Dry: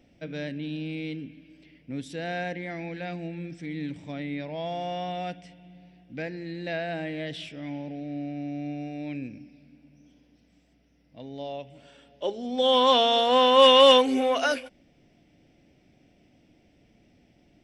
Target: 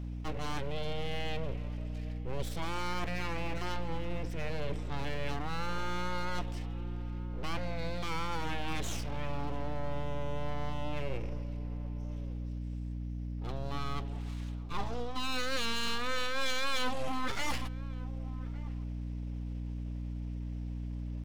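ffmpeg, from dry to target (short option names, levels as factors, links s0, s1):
-filter_complex "[0:a]atempo=0.83,aeval=exprs='abs(val(0))':c=same,aeval=exprs='val(0)+0.00891*(sin(2*PI*60*n/s)+sin(2*PI*2*60*n/s)/2+sin(2*PI*3*60*n/s)/3+sin(2*PI*4*60*n/s)/4+sin(2*PI*5*60*n/s)/5)':c=same,areverse,acompressor=threshold=0.0224:ratio=5,areverse,asplit=2[s0][s1];[s1]adelay=1166,volume=0.141,highshelf=f=4000:g=-26.2[s2];[s0][s2]amix=inputs=2:normalize=0,volume=1.5"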